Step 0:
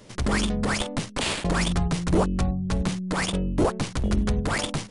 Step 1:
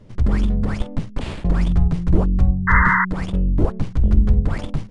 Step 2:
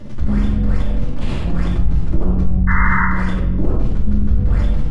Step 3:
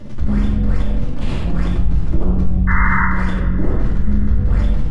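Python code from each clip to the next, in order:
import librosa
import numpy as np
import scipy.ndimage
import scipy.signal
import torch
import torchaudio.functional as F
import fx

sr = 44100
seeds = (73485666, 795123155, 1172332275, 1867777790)

y1 = fx.riaa(x, sr, side='playback')
y1 = fx.spec_paint(y1, sr, seeds[0], shape='noise', start_s=2.67, length_s=0.38, low_hz=910.0, high_hz=2100.0, level_db=-11.0)
y1 = F.gain(torch.from_numpy(y1), -5.5).numpy()
y2 = fx.room_shoebox(y1, sr, seeds[1], volume_m3=420.0, walls='mixed', distance_m=2.5)
y2 = fx.env_flatten(y2, sr, amount_pct=50)
y2 = F.gain(torch.from_numpy(y2), -13.0).numpy()
y3 = fx.echo_feedback(y2, sr, ms=431, feedback_pct=57, wet_db=-19.0)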